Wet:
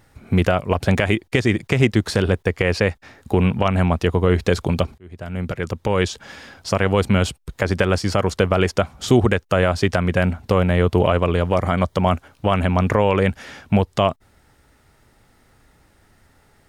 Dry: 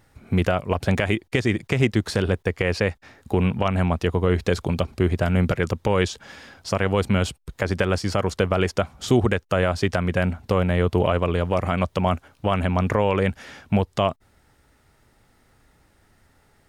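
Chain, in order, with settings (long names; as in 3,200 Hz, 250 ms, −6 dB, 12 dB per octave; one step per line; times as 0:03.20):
0:04.98–0:06.25: fade in
0:11.56–0:12.01: notch filter 2,600 Hz, Q 5.1
level +3.5 dB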